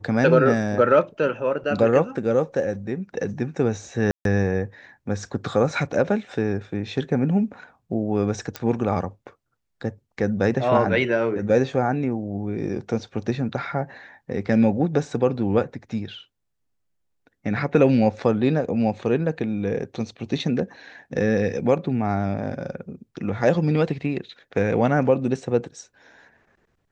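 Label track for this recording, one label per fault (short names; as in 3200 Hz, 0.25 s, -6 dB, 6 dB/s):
4.110000	4.250000	gap 0.142 s
8.560000	8.560000	pop -12 dBFS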